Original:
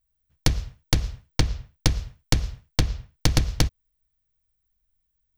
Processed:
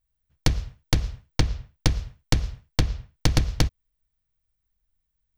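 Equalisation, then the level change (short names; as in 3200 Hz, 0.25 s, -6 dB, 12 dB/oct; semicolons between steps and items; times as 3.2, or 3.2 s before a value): high shelf 5300 Hz -5 dB; 0.0 dB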